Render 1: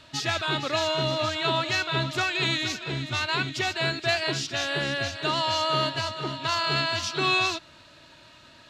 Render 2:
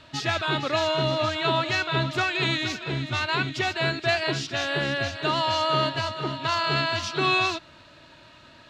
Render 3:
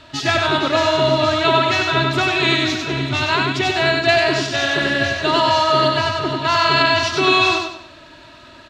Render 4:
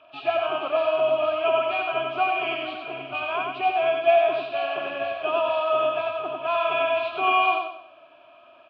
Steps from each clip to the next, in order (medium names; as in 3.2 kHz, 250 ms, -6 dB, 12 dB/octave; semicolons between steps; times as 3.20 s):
treble shelf 4.9 kHz -9.5 dB; trim +2.5 dB
comb 3 ms, depth 38%; on a send: feedback delay 96 ms, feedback 35%, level -3.5 dB; on the sum: trim +5.5 dB
knee-point frequency compression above 2.1 kHz 1.5:1; vowel filter a; trim +3 dB